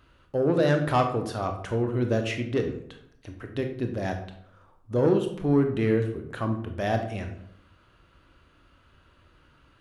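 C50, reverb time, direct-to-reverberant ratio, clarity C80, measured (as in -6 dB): 8.0 dB, 0.75 s, 4.5 dB, 11.5 dB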